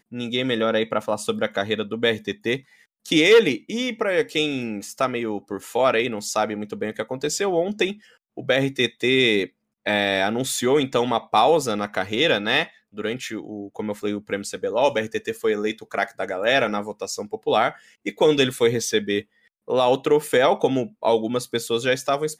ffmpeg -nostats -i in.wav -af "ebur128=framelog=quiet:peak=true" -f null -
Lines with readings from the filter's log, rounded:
Integrated loudness:
  I:         -22.3 LUFS
  Threshold: -32.6 LUFS
Loudness range:
  LRA:         3.9 LU
  Threshold: -42.5 LUFS
  LRA low:   -24.8 LUFS
  LRA high:  -20.9 LUFS
True peak:
  Peak:       -5.2 dBFS